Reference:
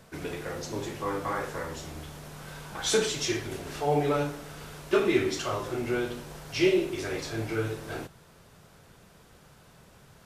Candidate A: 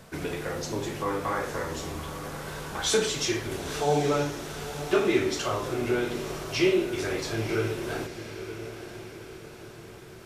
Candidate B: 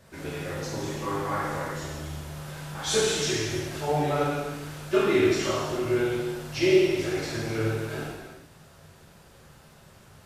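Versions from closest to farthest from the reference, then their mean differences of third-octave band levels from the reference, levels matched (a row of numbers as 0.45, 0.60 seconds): B, A; 3.0, 4.0 decibels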